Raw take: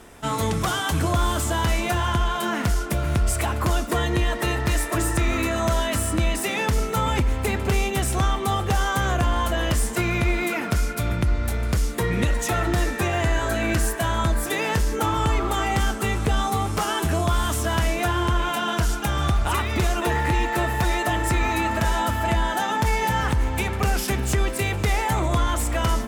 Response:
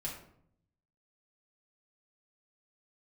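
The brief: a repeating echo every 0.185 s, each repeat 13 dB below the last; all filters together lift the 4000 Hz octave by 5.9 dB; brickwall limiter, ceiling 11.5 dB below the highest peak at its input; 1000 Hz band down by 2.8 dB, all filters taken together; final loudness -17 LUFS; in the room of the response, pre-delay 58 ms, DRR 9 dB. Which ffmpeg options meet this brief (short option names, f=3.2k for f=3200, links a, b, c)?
-filter_complex "[0:a]equalizer=f=1k:t=o:g=-4,equalizer=f=4k:t=o:g=8,alimiter=limit=-21dB:level=0:latency=1,aecho=1:1:185|370|555:0.224|0.0493|0.0108,asplit=2[a][b];[1:a]atrim=start_sample=2205,adelay=58[c];[b][c]afir=irnorm=-1:irlink=0,volume=-9.5dB[d];[a][d]amix=inputs=2:normalize=0,volume=11.5dB"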